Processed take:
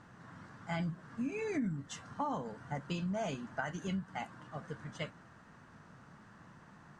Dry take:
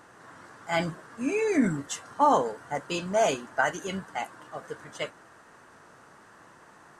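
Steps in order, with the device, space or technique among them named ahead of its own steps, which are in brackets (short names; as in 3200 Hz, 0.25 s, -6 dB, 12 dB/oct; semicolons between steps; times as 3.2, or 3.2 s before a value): jukebox (LPF 5900 Hz 12 dB/oct; resonant low shelf 270 Hz +10 dB, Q 1.5; compressor 5:1, threshold -28 dBFS, peak gain reduction 14 dB); gain -6 dB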